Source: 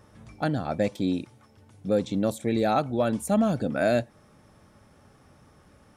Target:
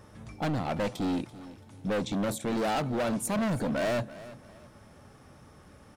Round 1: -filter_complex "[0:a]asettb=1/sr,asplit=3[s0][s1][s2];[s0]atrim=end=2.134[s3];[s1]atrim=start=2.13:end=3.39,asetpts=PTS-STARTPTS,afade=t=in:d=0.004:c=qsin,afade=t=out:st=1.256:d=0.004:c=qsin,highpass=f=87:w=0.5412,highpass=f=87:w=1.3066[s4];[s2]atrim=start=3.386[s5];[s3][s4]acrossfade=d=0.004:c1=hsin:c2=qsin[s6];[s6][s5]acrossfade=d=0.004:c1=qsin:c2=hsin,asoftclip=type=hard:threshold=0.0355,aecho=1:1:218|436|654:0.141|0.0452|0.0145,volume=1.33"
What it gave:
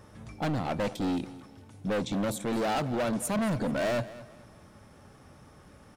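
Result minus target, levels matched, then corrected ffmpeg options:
echo 117 ms early
-filter_complex "[0:a]asettb=1/sr,asplit=3[s0][s1][s2];[s0]atrim=end=2.134[s3];[s1]atrim=start=2.13:end=3.39,asetpts=PTS-STARTPTS,afade=t=in:d=0.004:c=qsin,afade=t=out:st=1.256:d=0.004:c=qsin,highpass=f=87:w=0.5412,highpass=f=87:w=1.3066[s4];[s2]atrim=start=3.386[s5];[s3][s4]acrossfade=d=0.004:c1=hsin:c2=qsin[s6];[s6][s5]acrossfade=d=0.004:c1=qsin:c2=hsin,asoftclip=type=hard:threshold=0.0355,aecho=1:1:335|670|1005:0.141|0.0452|0.0145,volume=1.33"

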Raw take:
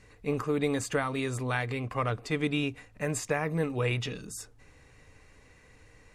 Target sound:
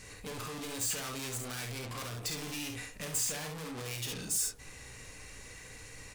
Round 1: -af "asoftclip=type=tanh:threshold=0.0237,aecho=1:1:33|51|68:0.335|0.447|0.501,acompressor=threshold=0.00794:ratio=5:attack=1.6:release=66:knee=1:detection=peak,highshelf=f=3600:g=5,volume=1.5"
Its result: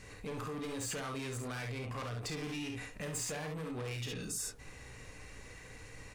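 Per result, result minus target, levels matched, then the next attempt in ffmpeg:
8 kHz band -3.5 dB; saturation: distortion -5 dB
-af "asoftclip=type=tanh:threshold=0.0237,aecho=1:1:33|51|68:0.335|0.447|0.501,acompressor=threshold=0.00794:ratio=5:attack=1.6:release=66:knee=1:detection=peak,highshelf=f=3600:g=15,volume=1.5"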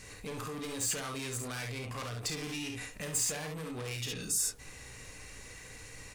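saturation: distortion -5 dB
-af "asoftclip=type=tanh:threshold=0.00668,aecho=1:1:33|51|68:0.335|0.447|0.501,acompressor=threshold=0.00794:ratio=5:attack=1.6:release=66:knee=1:detection=peak,highshelf=f=3600:g=15,volume=1.5"

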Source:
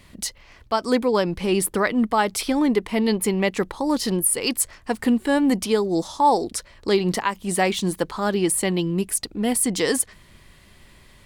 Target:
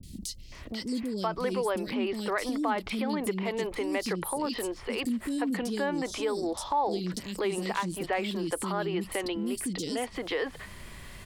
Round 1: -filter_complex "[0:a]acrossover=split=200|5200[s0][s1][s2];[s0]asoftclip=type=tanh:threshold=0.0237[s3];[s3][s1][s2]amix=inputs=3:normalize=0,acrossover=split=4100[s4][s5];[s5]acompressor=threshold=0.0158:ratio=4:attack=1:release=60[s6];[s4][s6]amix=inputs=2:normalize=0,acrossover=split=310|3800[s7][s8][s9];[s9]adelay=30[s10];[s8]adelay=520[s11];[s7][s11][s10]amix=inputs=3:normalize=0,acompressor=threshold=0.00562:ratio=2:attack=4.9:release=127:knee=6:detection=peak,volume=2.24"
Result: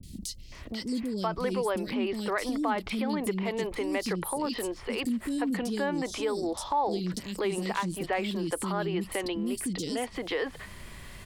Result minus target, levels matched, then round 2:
saturation: distortion -6 dB
-filter_complex "[0:a]acrossover=split=200|5200[s0][s1][s2];[s0]asoftclip=type=tanh:threshold=0.00891[s3];[s3][s1][s2]amix=inputs=3:normalize=0,acrossover=split=4100[s4][s5];[s5]acompressor=threshold=0.0158:ratio=4:attack=1:release=60[s6];[s4][s6]amix=inputs=2:normalize=0,acrossover=split=310|3800[s7][s8][s9];[s9]adelay=30[s10];[s8]adelay=520[s11];[s7][s11][s10]amix=inputs=3:normalize=0,acompressor=threshold=0.00562:ratio=2:attack=4.9:release=127:knee=6:detection=peak,volume=2.24"

